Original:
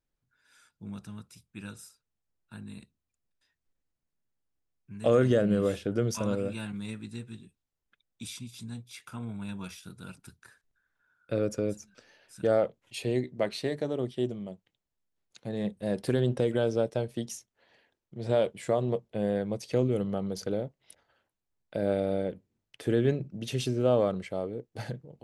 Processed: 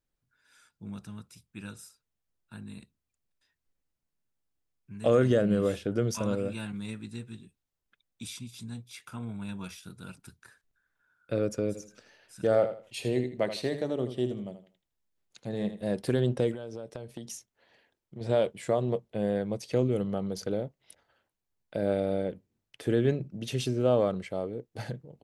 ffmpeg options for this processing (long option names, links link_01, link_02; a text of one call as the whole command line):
ffmpeg -i in.wav -filter_complex "[0:a]asplit=3[link_01][link_02][link_03];[link_01]afade=type=out:start_time=11.74:duration=0.02[link_04];[link_02]aecho=1:1:80|160|240:0.299|0.0746|0.0187,afade=type=in:start_time=11.74:duration=0.02,afade=type=out:start_time=15.81:duration=0.02[link_05];[link_03]afade=type=in:start_time=15.81:duration=0.02[link_06];[link_04][link_05][link_06]amix=inputs=3:normalize=0,asettb=1/sr,asplit=3[link_07][link_08][link_09];[link_07]atrim=end=16.534[link_10];[link_08]atrim=start=16.53:end=18.21,asetpts=PTS-STARTPTS,afade=type=in:duration=0.004:curve=qsin,afade=type=out:start_time=1.676:duration=0.004:curve=qsin,acompressor=threshold=-35dB:ratio=10:attack=3.2:release=140:knee=1:detection=peak[link_11];[link_09]atrim=start=18.206[link_12];[link_10][link_11]acrossfade=duration=0.004:curve1=hsin:curve2=qsin[link_13];[link_13][link_12]acrossfade=duration=0.004:curve1=qsin:curve2=hsin" out.wav